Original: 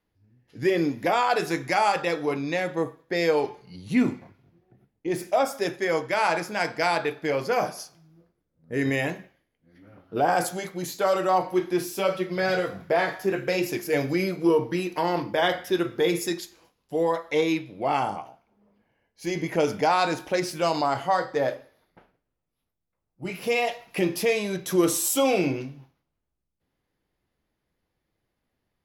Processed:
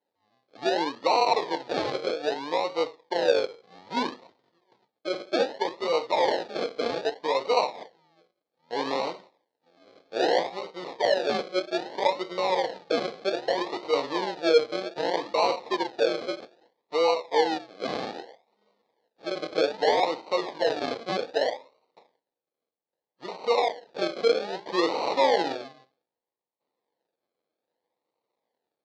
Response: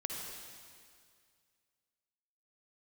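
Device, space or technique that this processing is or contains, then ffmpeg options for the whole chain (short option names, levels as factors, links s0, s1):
circuit-bent sampling toy: -af "acrusher=samples=37:mix=1:aa=0.000001:lfo=1:lforange=22.2:lforate=0.63,highpass=440,equalizer=f=490:t=q:w=4:g=6,equalizer=f=900:t=q:w=4:g=6,equalizer=f=1400:t=q:w=4:g=-8,equalizer=f=2700:t=q:w=4:g=-5,equalizer=f=4200:t=q:w=4:g=6,lowpass=f=4800:w=0.5412,lowpass=f=4800:w=1.3066,volume=0.891"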